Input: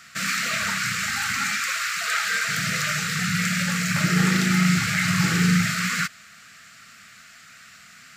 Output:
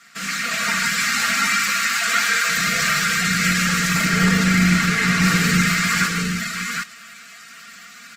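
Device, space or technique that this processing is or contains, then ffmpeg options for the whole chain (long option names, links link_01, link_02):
video call: -filter_complex "[0:a]asettb=1/sr,asplit=3[link_01][link_02][link_03];[link_01]atrim=end=4.084[link_04];[link_02]atrim=start=4.08:end=5.23,asetpts=PTS-STARTPTS,afade=type=in:duration=0.004:curve=qsin,afade=type=out:start_time=1.146:duration=0.004:curve=qsin,highshelf=frequency=4200:gain=-5.5[link_05];[link_03]atrim=start=5.226[link_06];[link_04][link_05]acrossfade=duration=0.004:curve1=hsin:curve2=qsin[link_07];[link_07][link_06]acrossfade=duration=0.004:curve1=qsin:curve2=hsin,highpass=150,aecho=1:1:4.3:0.69,aecho=1:1:48|99|143|156|754|763:0.2|0.168|0.299|0.376|0.188|0.531,dynaudnorm=framelen=390:gausssize=3:maxgain=4.5dB,volume=-2dB" -ar 48000 -c:a libopus -b:a 16k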